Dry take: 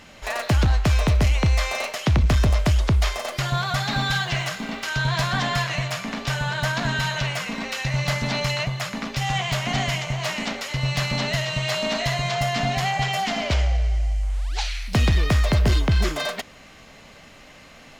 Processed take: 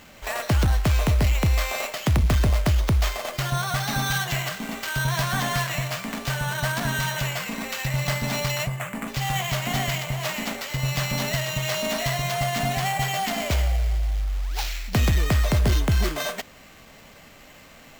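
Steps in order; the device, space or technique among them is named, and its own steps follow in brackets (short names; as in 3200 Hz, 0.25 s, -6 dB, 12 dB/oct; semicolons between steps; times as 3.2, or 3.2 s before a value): 8.67–9.08 steep low-pass 2800 Hz; early companding sampler (sample-rate reducer 9800 Hz, jitter 0%; companded quantiser 6-bit); gain -1.5 dB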